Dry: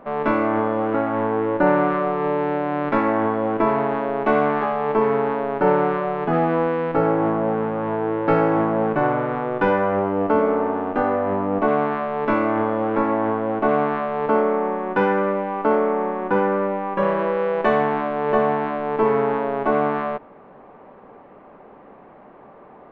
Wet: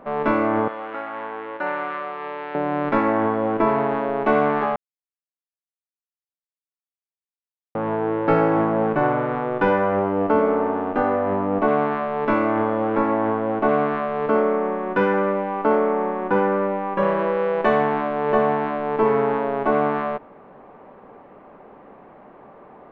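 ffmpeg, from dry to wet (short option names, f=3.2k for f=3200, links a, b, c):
-filter_complex "[0:a]asettb=1/sr,asplit=3[a][b][c];[a]atrim=end=0.684[d];[b]atrim=start=0.68:end=2.55,asetpts=PTS-STARTPTS,afade=t=in:d=0.004:c=qsin,afade=t=out:st=1.866:d=0.004:c=qsin,bandpass=f=3k:t=q:w=0.6[e];[c]atrim=start=2.546[f];[d][e]acrossfade=d=0.004:c1=hsin:c2=qsin[g];[g][f]acrossfade=d=0.004:c1=qsin:c2=hsin,asettb=1/sr,asplit=3[h][i][j];[h]atrim=end=13.694[k];[i]atrim=start=13.69:end=15.14,asetpts=PTS-STARTPTS,afade=t=in:d=0.004:c=qsin,afade=t=out:st=1.446:d=0.004:c=qsin,asuperstop=centerf=830:order=4:qfactor=6.3[l];[j]atrim=start=15.136[m];[k][l]acrossfade=d=0.004:c1=hsin:c2=qsin[n];[n][m]acrossfade=d=0.004:c1=qsin:c2=hsin,asplit=3[o][p][q];[o]atrim=end=4.76,asetpts=PTS-STARTPTS,afade=t=out:st=4.756:d=0.004:c=hsin[r];[p]atrim=start=4.76:end=7.75,asetpts=PTS-STARTPTS,volume=0[s];[q]atrim=start=7.75,asetpts=PTS-STARTPTS,afade=t=in:d=0.004:c=hsin[t];[r][s][t]concat=n=3:v=0:a=1"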